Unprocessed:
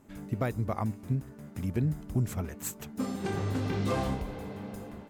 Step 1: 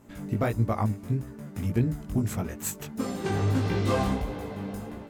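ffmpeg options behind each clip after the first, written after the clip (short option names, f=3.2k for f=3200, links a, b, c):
-af "flanger=delay=17:depth=3.1:speed=1.6,volume=7.5dB"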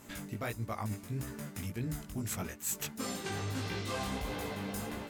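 -af "tiltshelf=f=1.3k:g=-6.5,areverse,acompressor=threshold=-39dB:ratio=6,areverse,volume=4.5dB"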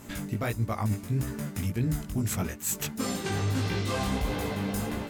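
-af "lowshelf=f=300:g=5.5,volume=5dB"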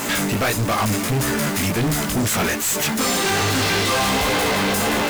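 -filter_complex "[0:a]asplit=2[a][b];[b]highpass=f=720:p=1,volume=33dB,asoftclip=type=tanh:threshold=-16dB[c];[a][c]amix=inputs=2:normalize=0,lowpass=f=8k:p=1,volume=-6dB,acrusher=bits=5:mix=0:aa=0.000001,volume=3dB"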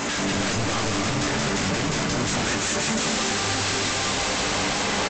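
-af "aresample=16000,aeval=exprs='0.0794*(abs(mod(val(0)/0.0794+3,4)-2)-1)':c=same,aresample=44100,aecho=1:1:180|288|352.8|391.7|415:0.631|0.398|0.251|0.158|0.1"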